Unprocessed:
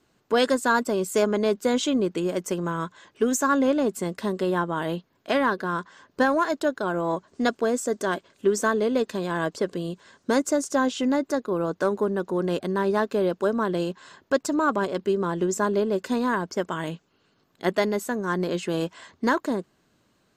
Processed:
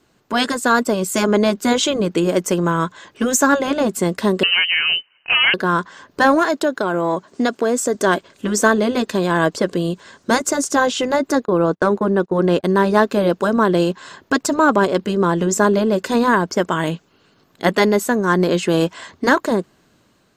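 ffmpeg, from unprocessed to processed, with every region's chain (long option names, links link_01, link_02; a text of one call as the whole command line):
ffmpeg -i in.wav -filter_complex "[0:a]asettb=1/sr,asplit=3[link_01][link_02][link_03];[link_01]atrim=end=4.434[link_04];[link_02]atrim=start=4.43:end=5.54,asetpts=PTS-STARTPTS,afade=type=in:duration=0.004:curve=qsin,afade=type=out:start_time=1.106:duration=0.004:curve=qsin,highpass=frequency=140:width=0.5412,highpass=frequency=140:width=1.3066,volume=19.5dB,asoftclip=hard,volume=-19.5dB,lowpass=frequency=2700:width_type=q:width=0.5098,lowpass=frequency=2700:width_type=q:width=0.6013,lowpass=frequency=2700:width_type=q:width=0.9,lowpass=frequency=2700:width_type=q:width=2.563,afreqshift=-3200[link_05];[link_03]atrim=start=5.536[link_06];[link_04][link_05]acrossfade=duration=0.004:curve1=hsin:curve2=qsin[link_07];[link_07][link_06]acrossfade=duration=0.004:curve1=qsin:curve2=hsin,asettb=1/sr,asplit=3[link_08][link_09][link_10];[link_08]atrim=end=6.444[link_11];[link_09]atrim=start=6.44:end=7.95,asetpts=PTS-STARTPTS,afade=type=in:duration=0.004:curve=qsin,afade=type=out:start_time=1.506:duration=0.004:curve=qsin,highpass=140,acompressor=threshold=-24dB:ratio=3:attack=3.2:release=140:knee=1:detection=peak[link_12];[link_10]atrim=start=7.946[link_13];[link_11][link_12]acrossfade=duration=0.004:curve1=hsin:curve2=qsin[link_14];[link_14][link_13]acrossfade=duration=0.004:curve1=qsin:curve2=hsin,asettb=1/sr,asplit=3[link_15][link_16][link_17];[link_15]atrim=end=11.454[link_18];[link_16]atrim=start=11.45:end=12.64,asetpts=PTS-STARTPTS,afade=type=in:duration=0.004:curve=qsin,afade=type=out:start_time=1.186:duration=0.004:curve=qsin,agate=range=-28dB:threshold=-35dB:ratio=16:release=100:detection=peak,highshelf=frequency=6200:gain=-9.5[link_19];[link_17]atrim=start=12.636[link_20];[link_18][link_19]acrossfade=duration=0.004:curve1=hsin:curve2=qsin[link_21];[link_21][link_20]acrossfade=duration=0.004:curve1=qsin:curve2=hsin,afftfilt=real='re*lt(hypot(re,im),0.708)':imag='im*lt(hypot(re,im),0.708)':win_size=1024:overlap=0.75,dynaudnorm=framelen=390:gausssize=5:maxgain=3.5dB,volume=6.5dB" out.wav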